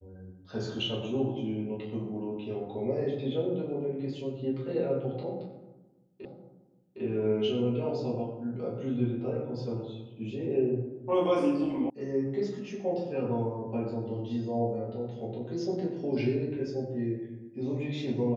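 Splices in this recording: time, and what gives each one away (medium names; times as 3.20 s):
6.25 s: repeat of the last 0.76 s
11.90 s: sound stops dead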